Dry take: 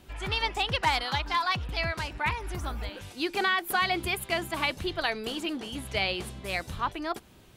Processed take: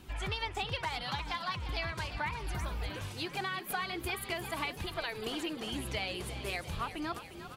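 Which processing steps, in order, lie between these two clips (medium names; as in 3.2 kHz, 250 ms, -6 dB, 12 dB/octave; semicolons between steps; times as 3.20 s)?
compression, threshold -34 dBFS, peak gain reduction 13 dB; flange 0.85 Hz, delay 0.7 ms, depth 2.1 ms, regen -51%; frequency-shifting echo 351 ms, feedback 63%, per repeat +42 Hz, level -11.5 dB; trim +4.5 dB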